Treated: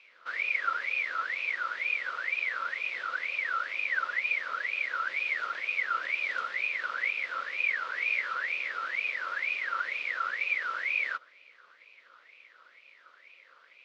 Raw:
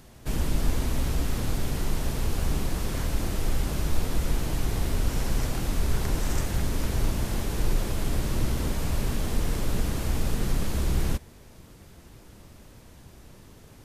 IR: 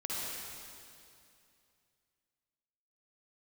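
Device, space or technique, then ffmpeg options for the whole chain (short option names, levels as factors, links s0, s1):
voice changer toy: -filter_complex "[0:a]aeval=exprs='val(0)*sin(2*PI*1900*n/s+1900*0.3/2.1*sin(2*PI*2.1*n/s))':c=same,highpass=450,equalizer=f=530:t=q:w=4:g=9,equalizer=f=800:t=q:w=4:g=-10,equalizer=f=1700:t=q:w=4:g=-7,lowpass=f=4300:w=0.5412,lowpass=f=4300:w=1.3066,asettb=1/sr,asplit=3[s0][s1][s2];[s0]atrim=end=7.924[s3];[s1]atrim=start=7.92:end=8.33,asetpts=PTS-STARTPTS,afade=t=in:d=0.004:c=qsin,afade=t=out:st=0.406:d=0.004:c=qsin,asplit=2[s4][s5];[s5]adelay=17,volume=0.596[s6];[s4][s6]amix=inputs=2:normalize=0,atrim=end_sample=18081[s7];[s2]atrim=start=8.326[s8];[s3][s7]acrossfade=d=0.004:c1=hsin:c2=qsin[s9];[s9][s8]acrossfade=d=0.004:c1=qsin:c2=hsin,volume=0.708"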